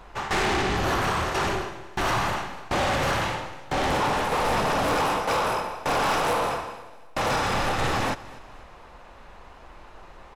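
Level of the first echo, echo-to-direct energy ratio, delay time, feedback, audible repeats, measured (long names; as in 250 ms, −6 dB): −19.5 dB, −18.5 dB, 246 ms, 41%, 3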